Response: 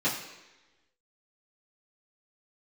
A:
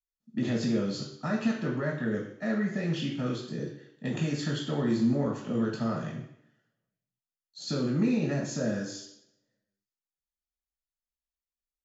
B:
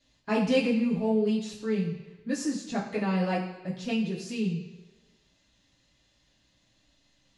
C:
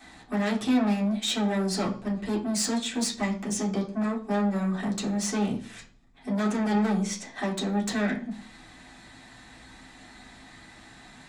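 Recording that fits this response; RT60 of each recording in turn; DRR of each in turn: B; 0.75, 1.1, 0.45 s; -2.5, -10.5, -6.5 dB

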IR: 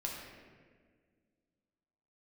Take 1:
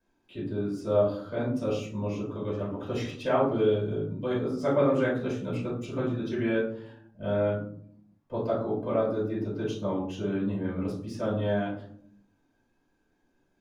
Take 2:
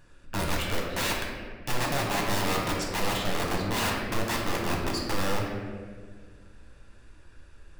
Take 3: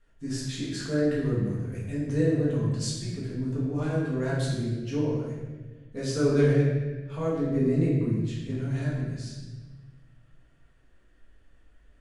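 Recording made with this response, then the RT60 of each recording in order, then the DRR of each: 2; 0.65, 1.7, 1.3 s; -10.0, -2.5, -7.5 dB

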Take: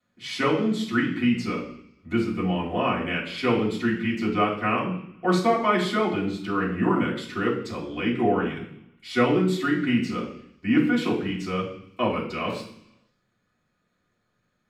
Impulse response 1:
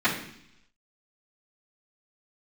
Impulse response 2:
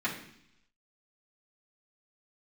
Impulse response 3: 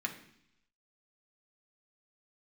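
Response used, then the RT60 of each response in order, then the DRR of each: 1; 0.70, 0.70, 0.70 s; -16.5, -9.0, 0.5 dB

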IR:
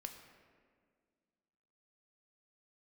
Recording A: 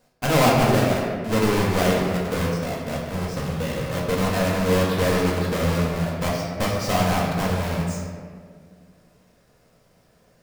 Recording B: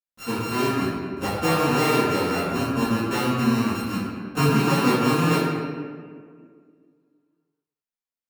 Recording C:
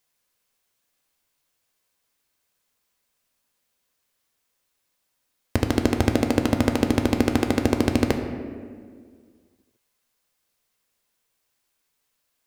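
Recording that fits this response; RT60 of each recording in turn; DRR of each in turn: C; 1.9, 1.9, 1.9 s; -4.5, -13.5, 4.5 dB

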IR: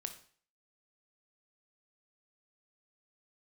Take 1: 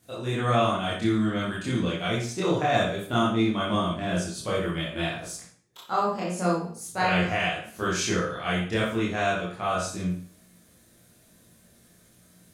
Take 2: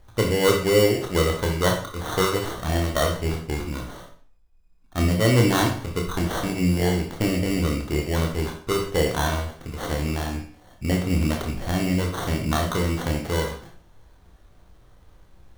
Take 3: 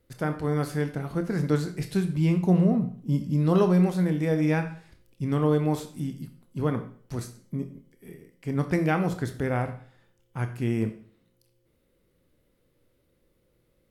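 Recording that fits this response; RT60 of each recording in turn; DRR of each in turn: 3; 0.50, 0.45, 0.45 s; -7.5, 0.5, 7.0 dB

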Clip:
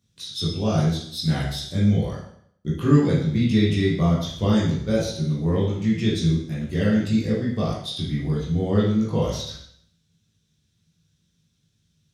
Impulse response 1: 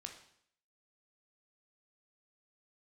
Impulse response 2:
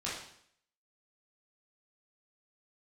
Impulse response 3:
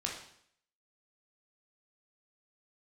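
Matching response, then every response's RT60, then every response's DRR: 2; 0.65, 0.65, 0.65 s; 3.0, -8.0, -1.5 dB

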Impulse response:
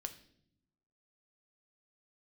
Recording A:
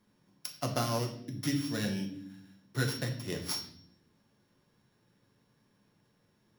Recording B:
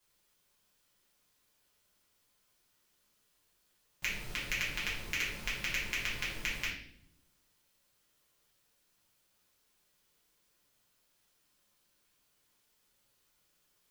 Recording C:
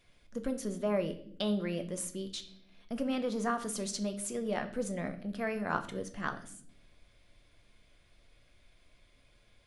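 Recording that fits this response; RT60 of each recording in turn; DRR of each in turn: C; not exponential, 0.65 s, not exponential; 2.0, -7.5, 7.5 dB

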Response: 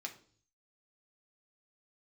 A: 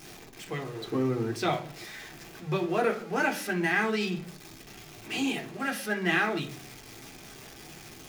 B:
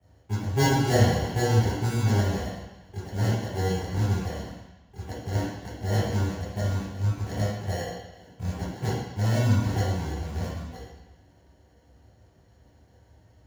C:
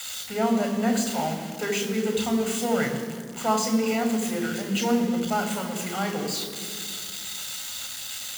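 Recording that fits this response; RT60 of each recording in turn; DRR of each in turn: A; 0.50, 1.1, 2.0 s; 2.0, -10.0, 4.5 dB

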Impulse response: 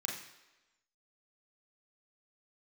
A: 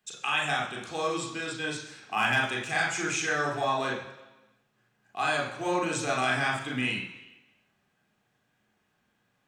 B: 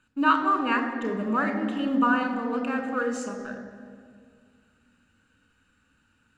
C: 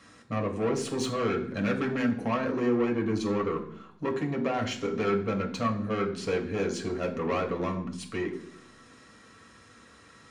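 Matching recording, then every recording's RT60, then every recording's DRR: A; 1.1, 2.1, 0.65 s; -2.0, 5.0, 0.0 dB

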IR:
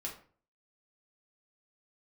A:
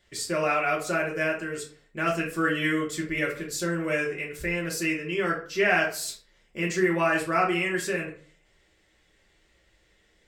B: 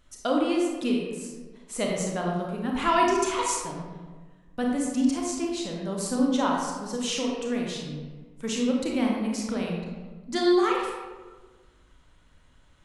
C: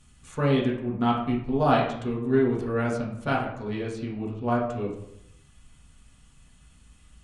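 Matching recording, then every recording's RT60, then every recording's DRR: A; 0.45, 1.4, 0.80 s; -2.5, -1.5, -4.5 dB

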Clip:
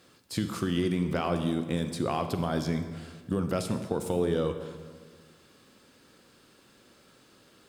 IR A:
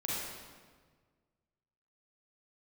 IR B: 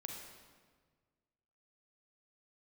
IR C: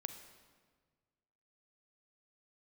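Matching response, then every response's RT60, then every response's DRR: C; 1.6, 1.6, 1.6 s; -6.5, 1.0, 8.0 dB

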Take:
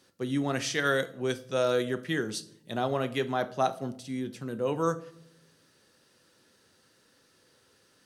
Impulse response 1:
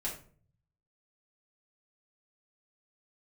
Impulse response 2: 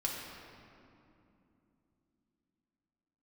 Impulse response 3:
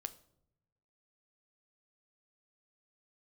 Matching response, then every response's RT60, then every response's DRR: 3; 0.45 s, 2.8 s, not exponential; -6.5, -3.0, 11.5 dB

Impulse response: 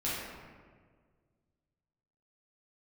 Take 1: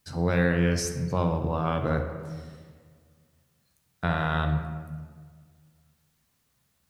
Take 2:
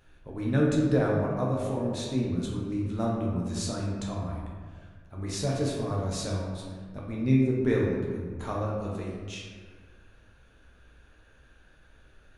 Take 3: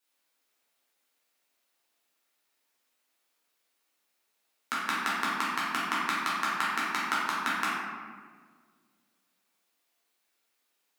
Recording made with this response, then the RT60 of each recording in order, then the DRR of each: 3; 1.7, 1.7, 1.7 s; 4.5, -4.0, -9.5 dB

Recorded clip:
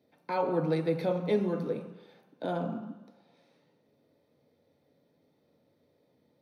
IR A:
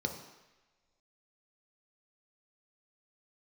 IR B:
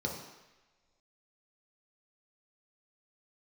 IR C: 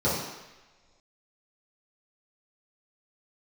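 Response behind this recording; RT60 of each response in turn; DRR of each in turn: A; not exponential, not exponential, not exponential; 3.0, -1.0, -11.0 dB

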